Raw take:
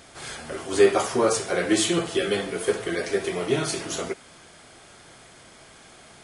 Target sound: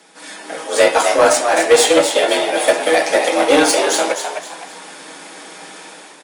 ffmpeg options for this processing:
ffmpeg -i in.wav -filter_complex "[0:a]aecho=1:1:6.2:0.59,dynaudnorm=framelen=170:gausssize=5:maxgain=12dB,aeval=exprs='0.891*(cos(1*acos(clip(val(0)/0.891,-1,1)))-cos(1*PI/2))+0.0251*(cos(2*acos(clip(val(0)/0.891,-1,1)))-cos(2*PI/2))+0.1*(cos(3*acos(clip(val(0)/0.891,-1,1)))-cos(3*PI/2))+0.00794*(cos(4*acos(clip(val(0)/0.891,-1,1)))-cos(4*PI/2))+0.0251*(cos(7*acos(clip(val(0)/0.891,-1,1)))-cos(7*PI/2))':channel_layout=same,afreqshift=150,asplit=5[link_01][link_02][link_03][link_04][link_05];[link_02]adelay=257,afreqshift=98,volume=-7.5dB[link_06];[link_03]adelay=514,afreqshift=196,volume=-17.1dB[link_07];[link_04]adelay=771,afreqshift=294,volume=-26.8dB[link_08];[link_05]adelay=1028,afreqshift=392,volume=-36.4dB[link_09];[link_01][link_06][link_07][link_08][link_09]amix=inputs=5:normalize=0,acontrast=78,volume=-1dB" out.wav

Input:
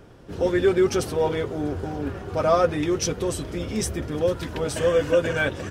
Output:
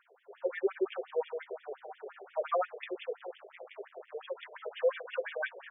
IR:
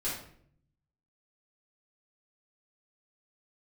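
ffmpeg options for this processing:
-filter_complex "[0:a]asettb=1/sr,asplit=3[link_01][link_02][link_03];[link_01]atrim=end=3.184[link_04];[link_02]atrim=start=3.18:end=4.12,asetpts=PTS-STARTPTS,afade=type=in:duration=0.004:curve=qsin,afade=type=out:start_time=0.936:duration=0.004:curve=qsin,aeval=exprs='max(val(0),0)':channel_layout=same[link_05];[link_03]atrim=start=4.116[link_06];[link_04][link_05]acrossfade=duration=0.004:curve1=hsin:curve2=qsin[link_07];[link_07][link_06]acrossfade=duration=0.004:curve1=qsin:curve2=hsin,afftfilt=real='re*between(b*sr/1024,490*pow(2600/490,0.5+0.5*sin(2*PI*5.7*pts/sr))/1.41,490*pow(2600/490,0.5+0.5*sin(2*PI*5.7*pts/sr))*1.41)':imag='im*between(b*sr/1024,490*pow(2600/490,0.5+0.5*sin(2*PI*5.7*pts/sr))/1.41,490*pow(2600/490,0.5+0.5*sin(2*PI*5.7*pts/sr))*1.41)':win_size=1024:overlap=0.75,volume=-5.5dB"

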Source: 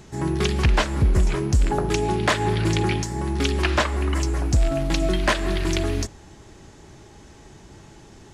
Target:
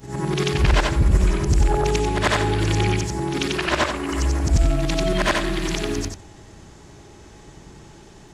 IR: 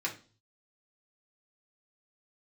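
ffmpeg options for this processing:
-af "afftfilt=real='re':imag='-im':win_size=8192:overlap=0.75,volume=6dB"

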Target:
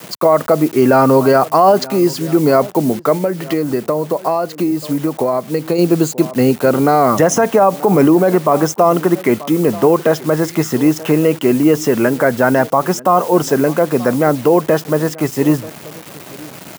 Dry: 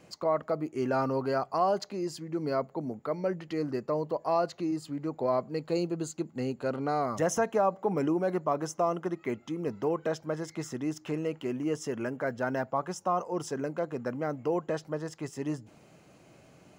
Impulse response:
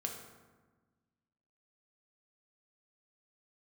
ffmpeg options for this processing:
-filter_complex "[0:a]aemphasis=mode=reproduction:type=50fm,acrusher=bits=8:mix=0:aa=0.000001,highpass=110,highshelf=frequency=9100:gain=11.5,asplit=2[link_01][link_02];[link_02]adelay=932.9,volume=-21dB,highshelf=frequency=4000:gain=-21[link_03];[link_01][link_03]amix=inputs=2:normalize=0,asplit=3[link_04][link_05][link_06];[link_04]afade=type=out:start_time=3.17:duration=0.02[link_07];[link_05]acompressor=threshold=-33dB:ratio=10,afade=type=in:start_time=3.17:duration=0.02,afade=type=out:start_time=5.78:duration=0.02[link_08];[link_06]afade=type=in:start_time=5.78:duration=0.02[link_09];[link_07][link_08][link_09]amix=inputs=3:normalize=0,alimiter=level_in=21dB:limit=-1dB:release=50:level=0:latency=1,volume=-1dB"

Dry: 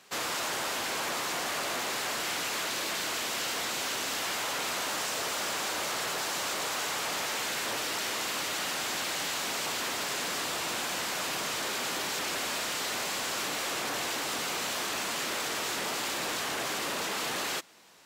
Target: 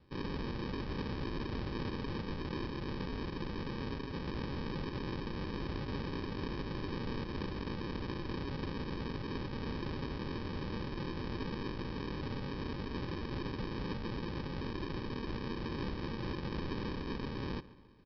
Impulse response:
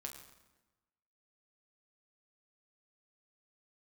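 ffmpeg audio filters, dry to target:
-filter_complex "[0:a]highshelf=frequency=4100:gain=-8.5,aresample=11025,acrusher=samples=16:mix=1:aa=0.000001,aresample=44100,asplit=2[link_01][link_02];[link_02]adelay=141,lowpass=frequency=4100:poles=1,volume=-18dB,asplit=2[link_03][link_04];[link_04]adelay=141,lowpass=frequency=4100:poles=1,volume=0.51,asplit=2[link_05][link_06];[link_06]adelay=141,lowpass=frequency=4100:poles=1,volume=0.51,asplit=2[link_07][link_08];[link_08]adelay=141,lowpass=frequency=4100:poles=1,volume=0.51[link_09];[link_01][link_03][link_05][link_07][link_09]amix=inputs=5:normalize=0,volume=-3dB"

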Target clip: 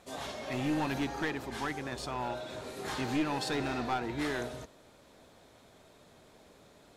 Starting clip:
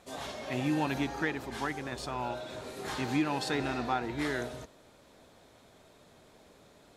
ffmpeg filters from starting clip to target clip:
ffmpeg -i in.wav -af "aeval=exprs='clip(val(0),-1,0.0376)':channel_layout=same" out.wav

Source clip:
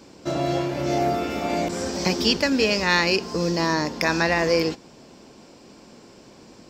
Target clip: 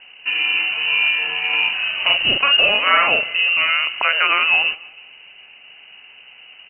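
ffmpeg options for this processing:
ffmpeg -i in.wav -filter_complex "[0:a]asettb=1/sr,asplit=3[link_01][link_02][link_03];[link_01]atrim=end=1.494[link_04];[link_02]atrim=start=1.49:end=3.7,asetpts=PTS-STARTPTS,afade=type=in:duration=0.004:curve=qsin,afade=type=out:start_time=2.206:duration=0.004:curve=qsin,asplit=2[link_05][link_06];[link_06]adelay=44,volume=-3.5dB[link_07];[link_05][link_07]amix=inputs=2:normalize=0,atrim=end_sample=97461[link_08];[link_03]atrim=start=3.696[link_09];[link_04][link_08]acrossfade=duration=0.004:curve1=hsin:curve2=qsin[link_10];[link_10][link_09]acrossfade=duration=0.004:curve1=qsin:curve2=hsin,aecho=1:1:157|314|471:0.0794|0.0373|0.0175,lowpass=frequency=2600:width_type=q:width=0.5098,lowpass=frequency=2600:width_type=q:width=0.6013,lowpass=frequency=2600:width_type=q:width=0.9,lowpass=frequency=2600:width_type=q:width=2.563,afreqshift=-3100,volume=4.5dB" out.wav

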